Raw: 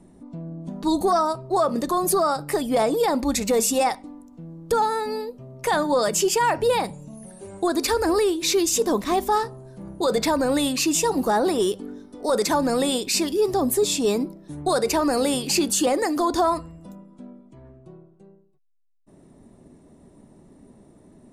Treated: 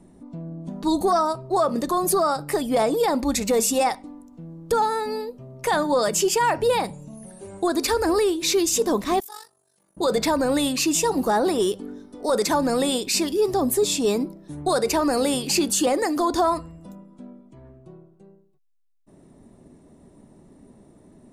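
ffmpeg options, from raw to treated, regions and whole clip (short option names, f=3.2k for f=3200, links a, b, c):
-filter_complex "[0:a]asettb=1/sr,asplit=3[a][b][c];[a]atrim=end=9.204[d];[b]atrim=start=9.2:end=9.97,asetpts=PTS-STARTPTS,afade=t=in:d=0.004:c=qsin,afade=t=out:st=0.766:d=0.004:c=qsin,aderivative,tremolo=f=48:d=0.75[e];[c]atrim=start=9.966[f];[d][e]acrossfade=d=0.004:c1=hsin:c2=qsin[g];[g][f]acrossfade=d=0.004:c1=qsin:c2=hsin"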